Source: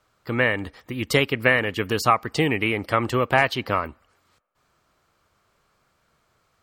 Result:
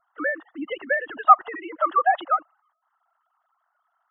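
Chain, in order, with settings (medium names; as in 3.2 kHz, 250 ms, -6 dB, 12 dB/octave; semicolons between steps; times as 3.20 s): formants replaced by sine waves; static phaser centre 990 Hz, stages 4; time stretch by phase-locked vocoder 0.62×; trim +4.5 dB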